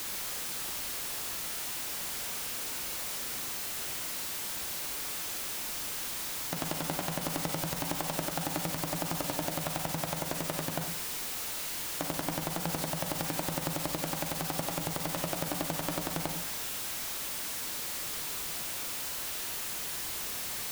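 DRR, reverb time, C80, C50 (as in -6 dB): 5.0 dB, 0.65 s, 10.0 dB, 7.0 dB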